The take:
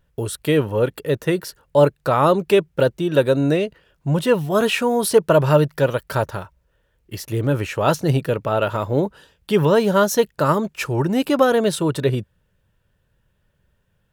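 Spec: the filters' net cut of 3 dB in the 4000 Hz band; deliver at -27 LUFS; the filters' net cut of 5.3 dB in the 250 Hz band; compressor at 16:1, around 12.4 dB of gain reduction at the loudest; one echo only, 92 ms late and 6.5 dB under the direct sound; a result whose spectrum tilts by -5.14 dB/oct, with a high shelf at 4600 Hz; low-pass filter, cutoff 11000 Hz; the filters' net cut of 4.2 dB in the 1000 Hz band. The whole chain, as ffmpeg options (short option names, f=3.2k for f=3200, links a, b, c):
-af "lowpass=11k,equalizer=f=250:t=o:g=-7.5,equalizer=f=1k:t=o:g=-5,equalizer=f=4k:t=o:g=-5.5,highshelf=f=4.6k:g=3.5,acompressor=threshold=-24dB:ratio=16,aecho=1:1:92:0.473,volume=2dB"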